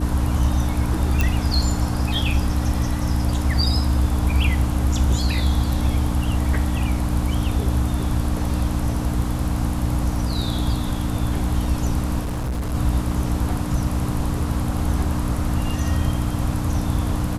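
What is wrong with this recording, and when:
hum 60 Hz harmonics 5 -26 dBFS
1.21 pop
12.2–12.75 clipped -21.5 dBFS

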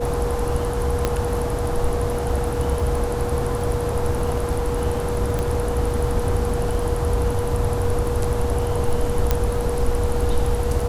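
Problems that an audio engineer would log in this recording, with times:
crackle 14/s -26 dBFS
tone 480 Hz -25 dBFS
1.05 pop -6 dBFS
5.39 pop
9.31 pop -4 dBFS

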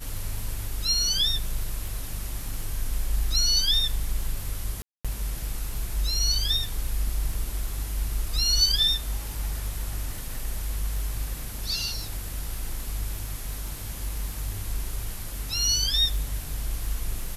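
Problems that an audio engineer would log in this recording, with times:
crackle 19/s -32 dBFS
4.82–5.05 gap 0.226 s

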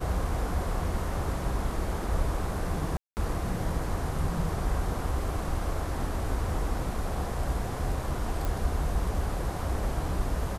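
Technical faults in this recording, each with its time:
2.97–3.17 gap 0.199 s
8.45 pop

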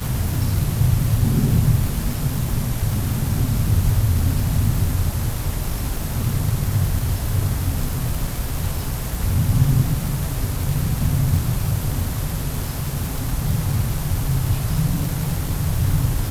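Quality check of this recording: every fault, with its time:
crackle 240/s -25 dBFS

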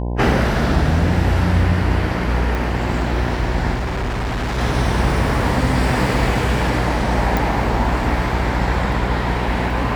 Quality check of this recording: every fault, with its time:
buzz 60 Hz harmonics 17 -22 dBFS
2.55 pop
3.74–4.59 clipped -19 dBFS
7.37 pop

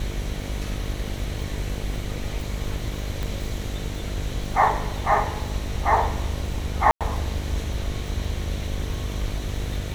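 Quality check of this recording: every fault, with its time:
buzz 50 Hz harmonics 15 -31 dBFS
crackle 20/s -32 dBFS
3.23 pop
6.91–7.01 gap 97 ms

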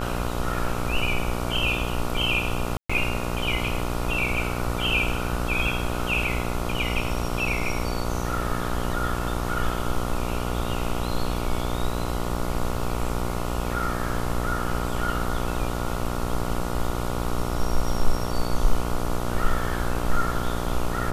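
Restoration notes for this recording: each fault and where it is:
buzz 60 Hz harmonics 24 -29 dBFS
2.77–2.9 gap 0.125 s

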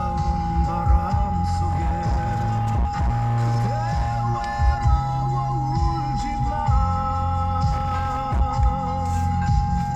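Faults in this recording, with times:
tone 820 Hz -25 dBFS
1.68–4.19 clipped -17.5 dBFS
7.71–8.42 clipped -18 dBFS

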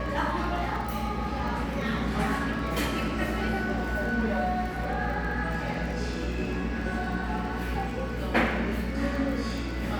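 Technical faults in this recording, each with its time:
crackle 21/s -35 dBFS
hum 60 Hz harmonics 7 -34 dBFS

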